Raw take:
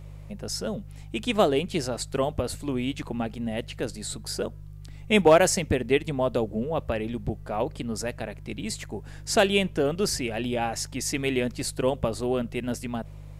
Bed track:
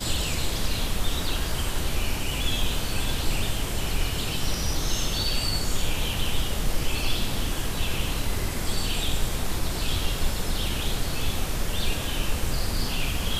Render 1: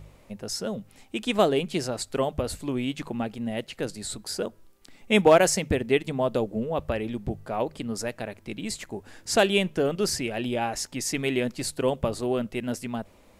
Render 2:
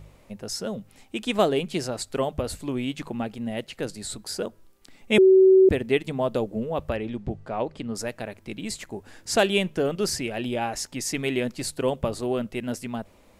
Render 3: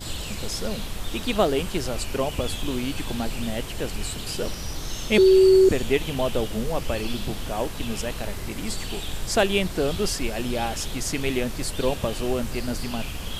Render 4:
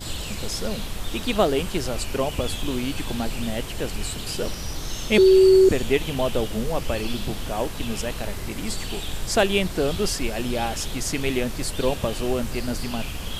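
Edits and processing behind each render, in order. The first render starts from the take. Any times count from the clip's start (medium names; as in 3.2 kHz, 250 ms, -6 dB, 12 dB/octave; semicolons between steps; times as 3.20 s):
de-hum 50 Hz, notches 3
5.18–5.69 s: bleep 379 Hz -11 dBFS; 6.96–7.95 s: distance through air 76 m
add bed track -5.5 dB
trim +1 dB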